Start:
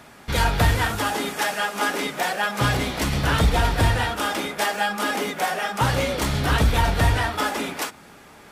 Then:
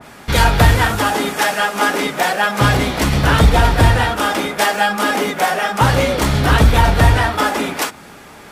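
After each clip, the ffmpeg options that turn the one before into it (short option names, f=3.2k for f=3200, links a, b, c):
-af "adynamicequalizer=threshold=0.0224:dfrequency=2000:dqfactor=0.7:tfrequency=2000:tqfactor=0.7:attack=5:release=100:ratio=0.375:range=1.5:mode=cutabove:tftype=highshelf,volume=8dB"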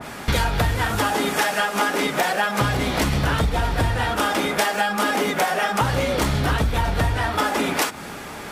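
-af "acompressor=threshold=-22dB:ratio=12,volume=4.5dB"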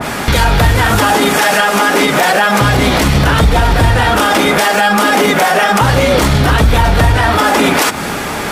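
-af "alimiter=level_in=16.5dB:limit=-1dB:release=50:level=0:latency=1,volume=-1dB"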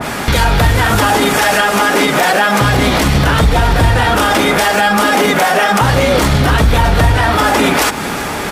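-af "aecho=1:1:382|764|1146|1528:0.141|0.065|0.0299|0.0137,volume=-1dB"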